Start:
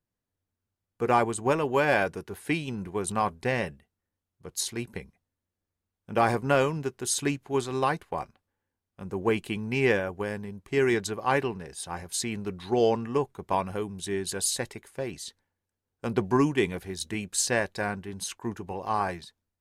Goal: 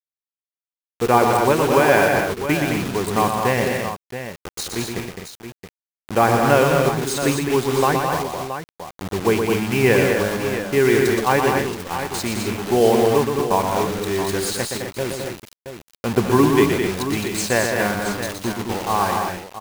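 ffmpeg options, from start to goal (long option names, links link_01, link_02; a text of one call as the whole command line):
ffmpeg -i in.wav -filter_complex "[0:a]lowpass=frequency=3200:poles=1,acrusher=bits=5:mix=0:aa=0.000001,asplit=2[link_01][link_02];[link_02]aecho=0:1:120|211|255|674:0.531|0.531|0.376|0.316[link_03];[link_01][link_03]amix=inputs=2:normalize=0,volume=7dB" out.wav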